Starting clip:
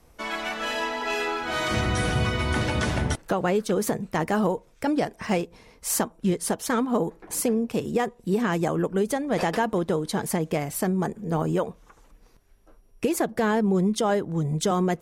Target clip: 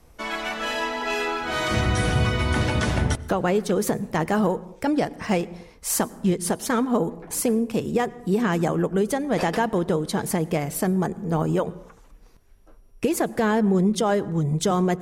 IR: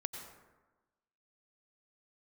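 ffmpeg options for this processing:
-filter_complex "[0:a]asplit=2[s0][s1];[1:a]atrim=start_sample=2205,afade=t=out:st=0.35:d=0.01,atrim=end_sample=15876,lowshelf=f=230:g=12[s2];[s1][s2]afir=irnorm=-1:irlink=0,volume=0.2[s3];[s0][s3]amix=inputs=2:normalize=0"

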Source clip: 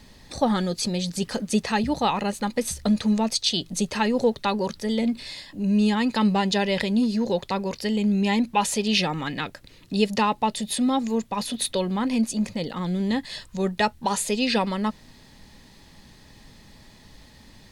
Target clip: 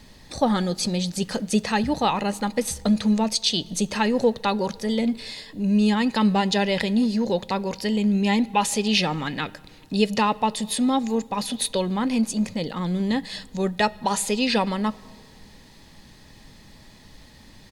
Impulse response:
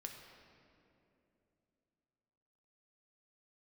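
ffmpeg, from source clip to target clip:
-filter_complex "[0:a]asplit=2[s0][s1];[s1]aecho=1:1:6.4:0.5[s2];[1:a]atrim=start_sample=2205,asetrate=66150,aresample=44100[s3];[s2][s3]afir=irnorm=-1:irlink=0,volume=0.355[s4];[s0][s4]amix=inputs=2:normalize=0"

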